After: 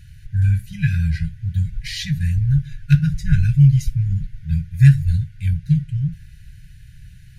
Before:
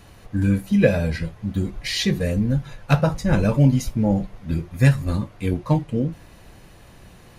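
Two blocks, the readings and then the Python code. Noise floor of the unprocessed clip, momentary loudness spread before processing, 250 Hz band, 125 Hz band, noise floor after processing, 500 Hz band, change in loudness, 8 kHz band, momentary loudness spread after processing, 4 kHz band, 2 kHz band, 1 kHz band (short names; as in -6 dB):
-47 dBFS, 9 LU, -3.0 dB, +5.5 dB, -43 dBFS, under -40 dB, +2.5 dB, n/a, 11 LU, -4.0 dB, -3.5 dB, under -15 dB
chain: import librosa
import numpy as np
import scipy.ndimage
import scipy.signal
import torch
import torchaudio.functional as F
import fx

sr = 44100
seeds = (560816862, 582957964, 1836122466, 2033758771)

y = fx.brickwall_bandstop(x, sr, low_hz=170.0, high_hz=1400.0)
y = fx.low_shelf(y, sr, hz=430.0, db=11.5)
y = F.gain(torch.from_numpy(y), -4.0).numpy()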